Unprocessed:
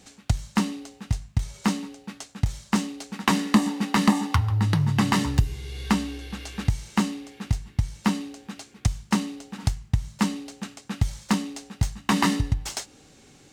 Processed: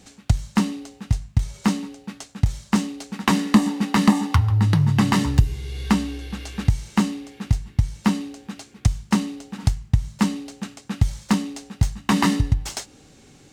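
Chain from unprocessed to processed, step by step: low shelf 330 Hz +4 dB; gain +1 dB

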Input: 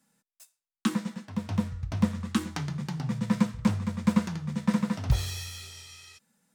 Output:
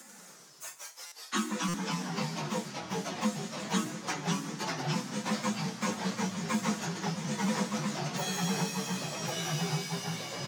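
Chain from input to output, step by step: HPF 260 Hz 24 dB/oct; bell 6700 Hz +9.5 dB 0.23 oct; notches 60/120/180/240/300/360/420/480 Hz; comb 5.5 ms, depth 47%; plain phase-vocoder stretch 1.6×; echoes that change speed 91 ms, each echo -2 st, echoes 3; stuck buffer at 1.06/1.68, samples 256, times 9; three-band squash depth 70%; gain +2 dB

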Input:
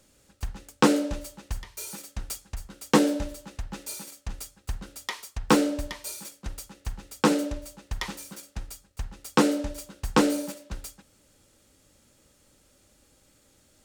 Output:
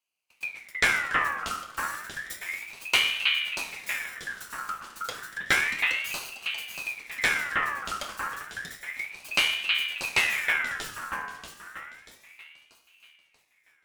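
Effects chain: minimum comb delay 0.55 ms; de-hum 62.11 Hz, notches 30; gate with hold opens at -50 dBFS; echo with dull and thin repeats by turns 0.318 s, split 1400 Hz, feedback 64%, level -2 dB; on a send at -5.5 dB: reverb RT60 0.75 s, pre-delay 3 ms; on the sum: ring modulator with a swept carrier 2000 Hz, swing 35%, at 0.31 Hz

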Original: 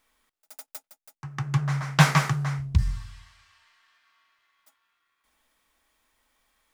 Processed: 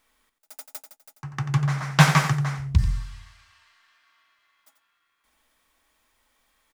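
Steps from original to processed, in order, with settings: echo 89 ms -10.5 dB; gain +2 dB

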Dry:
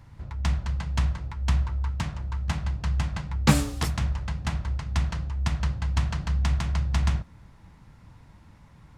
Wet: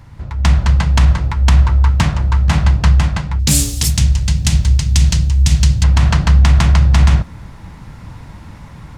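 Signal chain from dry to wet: 3.39–5.84 EQ curve 130 Hz 0 dB, 1200 Hz -15 dB, 2800 Hz 0 dB, 6800 Hz +10 dB; AGC gain up to 7.5 dB; maximiser +11 dB; gain -1 dB

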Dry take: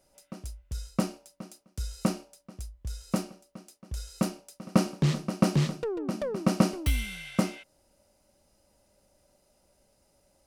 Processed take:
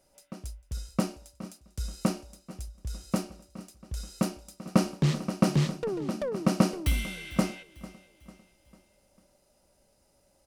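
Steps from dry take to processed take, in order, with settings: feedback echo 0.448 s, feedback 46%, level -18.5 dB

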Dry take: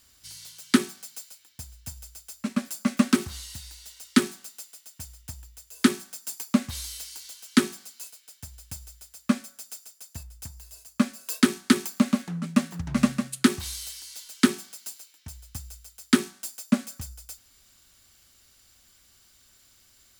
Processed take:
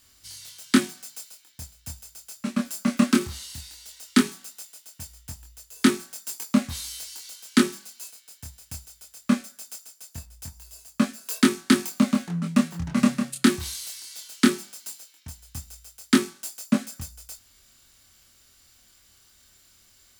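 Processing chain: chorus 0.18 Hz, depth 3 ms; gain +4.5 dB

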